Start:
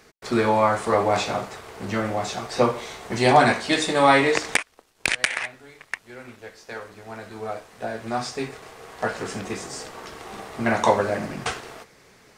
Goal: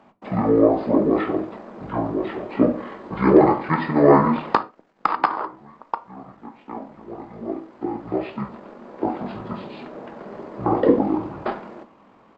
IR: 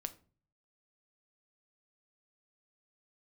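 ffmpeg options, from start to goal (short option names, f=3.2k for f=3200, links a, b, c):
-filter_complex "[0:a]acrossover=split=350 3400:gain=0.158 1 0.141[a][b][c];[a][b][c]amix=inputs=3:normalize=0,asetrate=22696,aresample=44100,atempo=1.94306,asplit=2[d][e];[1:a]atrim=start_sample=2205,atrim=end_sample=6174[f];[e][f]afir=irnorm=-1:irlink=0,volume=10dB[g];[d][g]amix=inputs=2:normalize=0,volume=-6.5dB"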